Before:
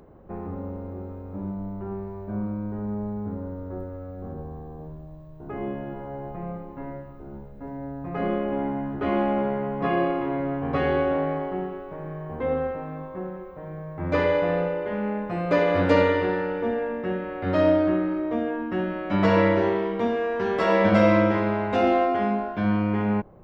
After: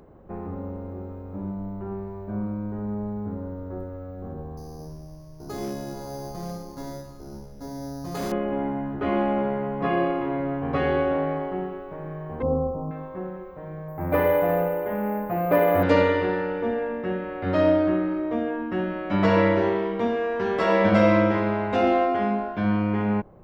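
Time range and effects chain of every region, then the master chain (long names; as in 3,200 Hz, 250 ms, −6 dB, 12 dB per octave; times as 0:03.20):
0:04.57–0:08.32: bad sample-rate conversion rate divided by 8×, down none, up hold + hard clipping −26 dBFS
0:12.42–0:12.91: linear-phase brick-wall band-stop 1,300–4,800 Hz + bass and treble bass +8 dB, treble +2 dB
0:13.88–0:15.83: low-pass filter 2,300 Hz + parametric band 740 Hz +8.5 dB 0.33 octaves + bad sample-rate conversion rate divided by 3×, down filtered, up hold
whole clip: no processing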